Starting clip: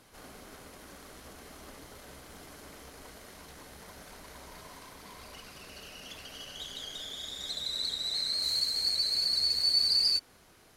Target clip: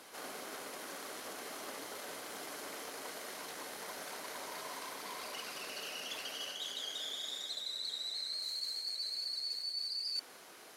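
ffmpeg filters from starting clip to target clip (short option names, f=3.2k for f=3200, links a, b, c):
-af "highpass=350,areverse,acompressor=threshold=-44dB:ratio=8,areverse,volume=6dB"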